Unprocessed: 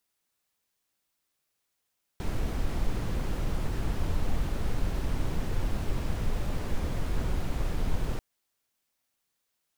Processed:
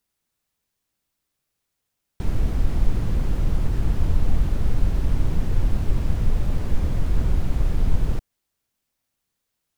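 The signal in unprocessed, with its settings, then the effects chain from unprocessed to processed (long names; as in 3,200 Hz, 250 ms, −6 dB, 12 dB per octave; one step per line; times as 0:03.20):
noise brown, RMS −27 dBFS 5.99 s
low-shelf EQ 250 Hz +10 dB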